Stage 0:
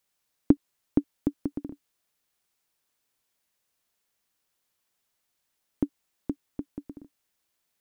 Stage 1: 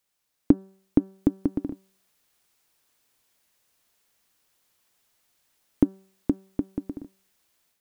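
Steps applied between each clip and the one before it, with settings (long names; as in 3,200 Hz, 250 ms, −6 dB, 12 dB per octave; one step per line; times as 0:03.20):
hum removal 191.9 Hz, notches 9
automatic gain control gain up to 8 dB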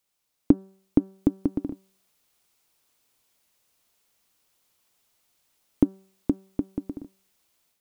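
parametric band 1,700 Hz −4.5 dB 0.35 octaves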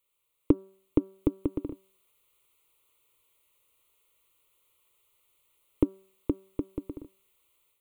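phaser with its sweep stopped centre 1,100 Hz, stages 8
level +2 dB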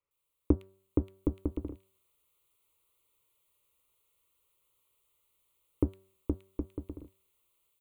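sub-octave generator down 2 octaves, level −1 dB
multiband delay without the direct sound lows, highs 110 ms, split 2,300 Hz
level −4.5 dB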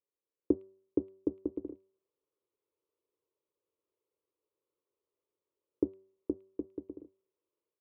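resonant band-pass 390 Hz, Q 2.4
level +2.5 dB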